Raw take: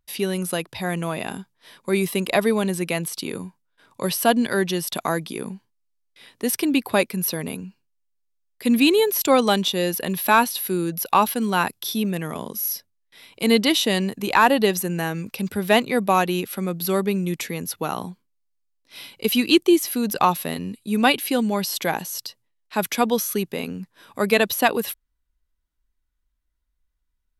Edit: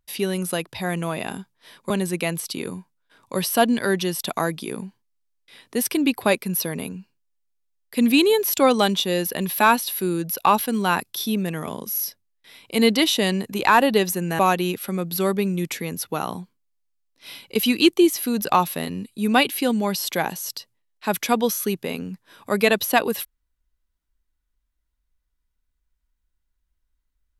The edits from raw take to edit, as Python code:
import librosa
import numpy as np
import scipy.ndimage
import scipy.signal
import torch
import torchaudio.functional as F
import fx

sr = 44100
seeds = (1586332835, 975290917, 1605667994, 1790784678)

y = fx.edit(x, sr, fx.cut(start_s=1.9, length_s=0.68),
    fx.cut(start_s=15.07, length_s=1.01), tone=tone)